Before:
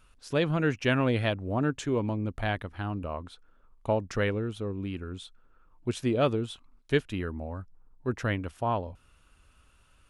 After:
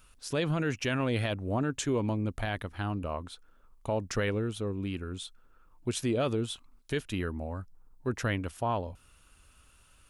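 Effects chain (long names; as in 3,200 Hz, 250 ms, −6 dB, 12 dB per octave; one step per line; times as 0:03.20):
high-shelf EQ 5,100 Hz +10 dB
brickwall limiter −20.5 dBFS, peak gain reduction 9 dB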